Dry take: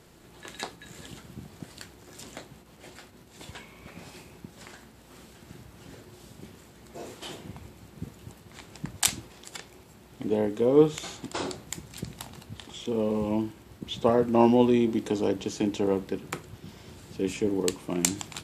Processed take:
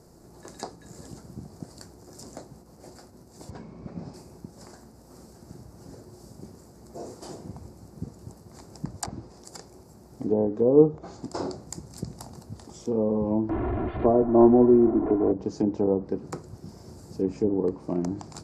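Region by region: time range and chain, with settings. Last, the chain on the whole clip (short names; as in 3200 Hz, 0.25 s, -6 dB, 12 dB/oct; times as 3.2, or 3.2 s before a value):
3.5–4.14 LPF 4100 Hz + bell 180 Hz +8 dB 1.9 oct
13.49–15.32 delta modulation 16 kbps, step -24.5 dBFS + comb 2.9 ms, depth 67%
whole clip: treble ducked by the level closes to 890 Hz, closed at -21 dBFS; EQ curve 720 Hz 0 dB, 1300 Hz -7 dB, 3300 Hz -24 dB, 4800 Hz -1 dB, 7900 Hz -3 dB; gain +2.5 dB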